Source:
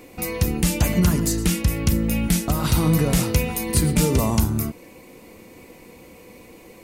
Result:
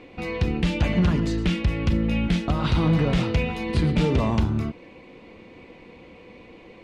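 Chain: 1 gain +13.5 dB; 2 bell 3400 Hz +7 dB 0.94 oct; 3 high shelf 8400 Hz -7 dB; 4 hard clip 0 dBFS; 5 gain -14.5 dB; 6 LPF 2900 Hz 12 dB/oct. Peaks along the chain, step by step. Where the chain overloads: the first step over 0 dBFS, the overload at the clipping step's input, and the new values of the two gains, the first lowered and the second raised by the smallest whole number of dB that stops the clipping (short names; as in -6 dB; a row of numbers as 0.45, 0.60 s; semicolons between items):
+7.0, +7.5, +7.0, 0.0, -14.5, -14.0 dBFS; step 1, 7.0 dB; step 1 +6.5 dB, step 5 -7.5 dB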